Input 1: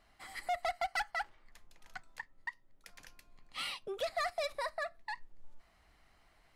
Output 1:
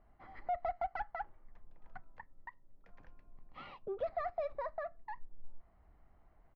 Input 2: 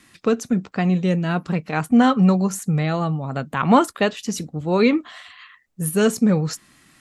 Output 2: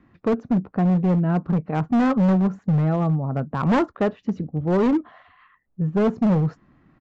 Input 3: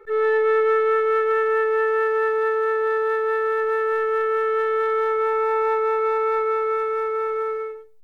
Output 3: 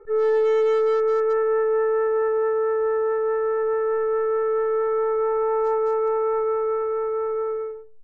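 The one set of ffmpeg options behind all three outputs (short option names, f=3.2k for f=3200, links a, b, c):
-af "lowpass=1k,lowshelf=f=160:g=5.5,aresample=16000,asoftclip=type=hard:threshold=-15.5dB,aresample=44100"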